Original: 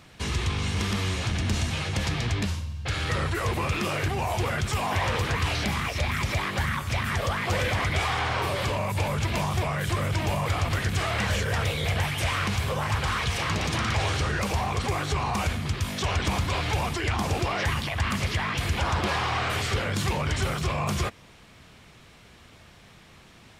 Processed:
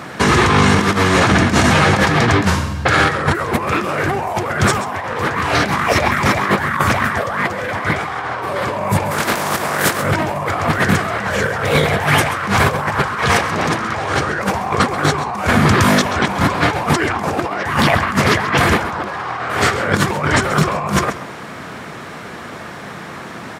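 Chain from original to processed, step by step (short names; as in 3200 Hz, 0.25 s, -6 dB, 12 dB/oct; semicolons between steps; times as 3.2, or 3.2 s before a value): 9.1–10 spectral contrast lowered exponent 0.45; HPF 180 Hz 12 dB/oct; resonant high shelf 2100 Hz -7.5 dB, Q 1.5; negative-ratio compressor -34 dBFS, ratio -0.5; echo 0.133 s -13.5 dB; maximiser +19.5 dB; gain -1 dB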